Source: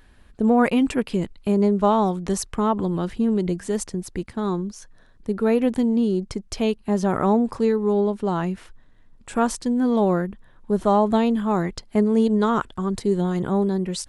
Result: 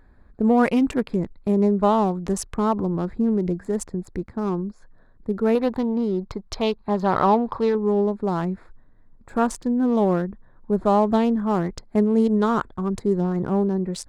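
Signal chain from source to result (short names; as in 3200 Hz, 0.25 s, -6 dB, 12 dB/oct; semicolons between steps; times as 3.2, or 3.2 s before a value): Wiener smoothing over 15 samples; 5.55–7.75 ten-band EQ 250 Hz -4 dB, 1000 Hz +8 dB, 4000 Hz +10 dB, 8000 Hz -7 dB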